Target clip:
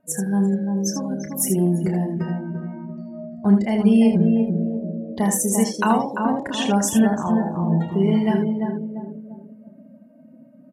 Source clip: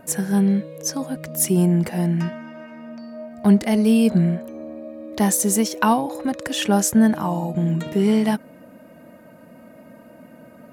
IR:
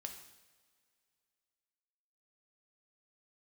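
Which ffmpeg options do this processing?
-filter_complex "[0:a]asplit=2[a][b];[b]adelay=343,lowpass=f=1.9k:p=1,volume=-4dB,asplit=2[c][d];[d]adelay=343,lowpass=f=1.9k:p=1,volume=0.45,asplit=2[e][f];[f]adelay=343,lowpass=f=1.9k:p=1,volume=0.45,asplit=2[g][h];[h]adelay=343,lowpass=f=1.9k:p=1,volume=0.45,asplit=2[i][j];[j]adelay=343,lowpass=f=1.9k:p=1,volume=0.45,asplit=2[k][l];[l]adelay=343,lowpass=f=1.9k:p=1,volume=0.45[m];[c][e][g][i][k][m]amix=inputs=6:normalize=0[n];[a][n]amix=inputs=2:normalize=0,afftdn=nr=21:nf=-32,asplit=2[o][p];[p]aecho=0:1:31|79:0.376|0.422[q];[o][q]amix=inputs=2:normalize=0,volume=-2.5dB"

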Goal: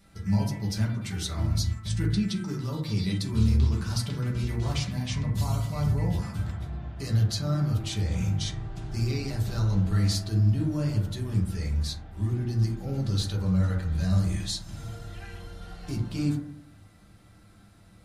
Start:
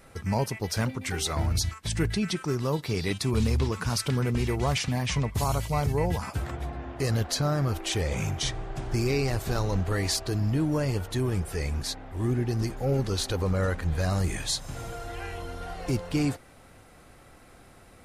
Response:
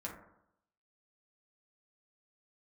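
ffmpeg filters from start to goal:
-filter_complex "[0:a]equalizer=f=125:t=o:w=1:g=7,equalizer=f=500:t=o:w=1:g=-8,equalizer=f=1k:t=o:w=1:g=-4,equalizer=f=2k:t=o:w=1:g=-4,equalizer=f=4k:t=o:w=1:g=6[a];[1:a]atrim=start_sample=2205[b];[a][b]afir=irnorm=-1:irlink=0,volume=-2.5dB"

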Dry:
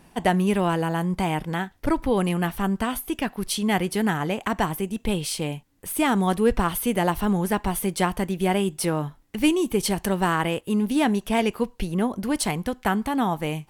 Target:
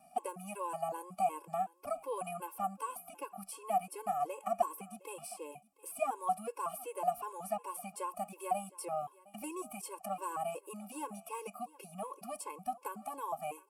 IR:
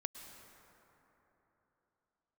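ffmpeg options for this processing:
-filter_complex "[0:a]equalizer=f=200:t=o:w=0.33:g=9,equalizer=f=1.6k:t=o:w=0.33:g=-6,equalizer=f=4k:t=o:w=0.33:g=-5,equalizer=f=6.3k:t=o:w=0.33:g=-10,acrossover=split=650|1800|6400[a][b][c][d];[a]acompressor=threshold=-30dB:ratio=4[e];[b]acompressor=threshold=-29dB:ratio=4[f];[c]acompressor=threshold=-50dB:ratio=4[g];[d]acompressor=threshold=-42dB:ratio=4[h];[e][f][g][h]amix=inputs=4:normalize=0,aexciter=amount=15.2:drive=3.3:freq=5.3k,asplit=3[i][j][k];[i]bandpass=f=730:t=q:w=8,volume=0dB[l];[j]bandpass=f=1.09k:t=q:w=8,volume=-6dB[m];[k]bandpass=f=2.44k:t=q:w=8,volume=-9dB[n];[l][m][n]amix=inputs=3:normalize=0,asplit=2[o][p];[p]aecho=0:1:713:0.0891[q];[o][q]amix=inputs=2:normalize=0,afftfilt=real='re*gt(sin(2*PI*2.7*pts/sr)*(1-2*mod(floor(b*sr/1024/280),2)),0)':imag='im*gt(sin(2*PI*2.7*pts/sr)*(1-2*mod(floor(b*sr/1024/280),2)),0)':win_size=1024:overlap=0.75,volume=6.5dB"

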